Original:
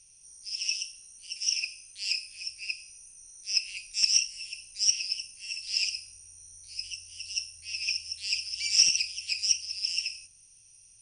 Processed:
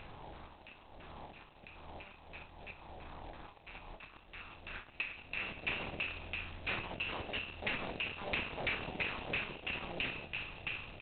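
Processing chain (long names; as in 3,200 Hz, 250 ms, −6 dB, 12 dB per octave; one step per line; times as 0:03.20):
compressor on every frequency bin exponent 0.6
mains-hum notches 60/120/180 Hz
in parallel at +3 dB: brickwall limiter −15 dBFS, peak gain reduction 7 dB
on the sum: downward compressor 5 to 1, threshold −29 dBFS, peak gain reduction 17 dB
soft clipping −20.5 dBFS, distortion −21 dB
low-pass filter sweep 910 Hz → 3,100 Hz, 0:03.69–0:06.08
wave folding −33.5 dBFS
auto-filter low-pass saw down 3 Hz 620–2,100 Hz
double-tracking delay 27 ms −11 dB
level +5 dB
G.726 16 kbit/s 8,000 Hz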